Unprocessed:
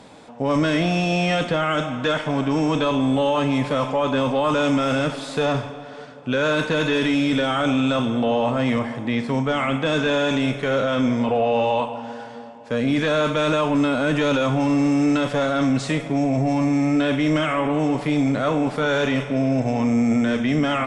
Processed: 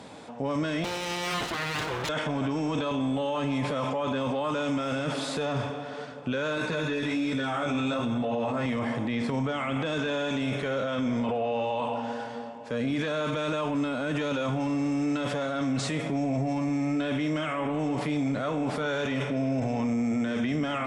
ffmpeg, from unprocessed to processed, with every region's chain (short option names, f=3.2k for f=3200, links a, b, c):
-filter_complex "[0:a]asettb=1/sr,asplit=3[a][b][c];[a]atrim=end=0.844[d];[b]atrim=start=0.84:end=2.09,asetpts=PTS-STARTPTS,afade=t=in:d=0.004:c=qsin,afade=t=out:st=1.246:d=0.004:c=qsin,lowshelf=f=360:g=-3.5,aecho=1:1:7.4:0.62,atrim=end_sample=55125,aeval=exprs='abs(val(0))':c=same[e];[c]atrim=start=2.086[f];[d][e]acrossfade=d=0.004:c1=hsin:c2=qsin[g];[g][f]acrossfade=d=0.004:c1=qsin:c2=hsin,asettb=1/sr,asplit=3[h][i][j];[h]atrim=end=6.564[k];[i]atrim=start=6.56:end=8.66,asetpts=PTS-STARTPTS,afade=t=in:d=0.004:c=qsin,afade=t=out:st=2.096:d=0.004:c=qsin,bandreject=f=3.1k:w=6.9,flanger=delay=15.5:depth=5:speed=1.2[l];[j]atrim=start=8.656[m];[k][l]acrossfade=d=0.004:c1=hsin:c2=qsin[n];[n][m]acrossfade=d=0.004:c1=qsin:c2=hsin,highpass=50,alimiter=limit=-21.5dB:level=0:latency=1:release=11"